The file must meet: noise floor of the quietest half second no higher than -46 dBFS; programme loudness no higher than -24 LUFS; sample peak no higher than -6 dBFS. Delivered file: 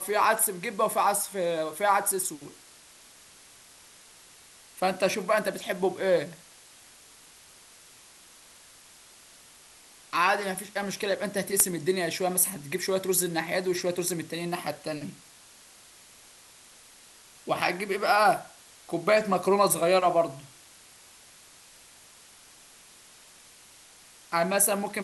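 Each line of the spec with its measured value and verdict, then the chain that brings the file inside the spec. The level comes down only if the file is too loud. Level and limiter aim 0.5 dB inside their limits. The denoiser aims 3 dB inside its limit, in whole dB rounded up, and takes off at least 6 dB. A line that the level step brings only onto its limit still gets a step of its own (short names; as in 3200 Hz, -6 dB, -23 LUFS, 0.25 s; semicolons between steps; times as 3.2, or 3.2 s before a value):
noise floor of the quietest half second -53 dBFS: OK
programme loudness -26.5 LUFS: OK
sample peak -5.0 dBFS: fail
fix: limiter -6.5 dBFS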